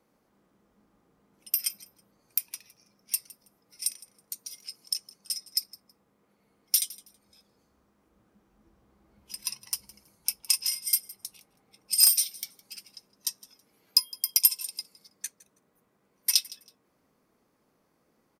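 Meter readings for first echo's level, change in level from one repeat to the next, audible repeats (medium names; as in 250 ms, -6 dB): -21.0 dB, -13.5 dB, 2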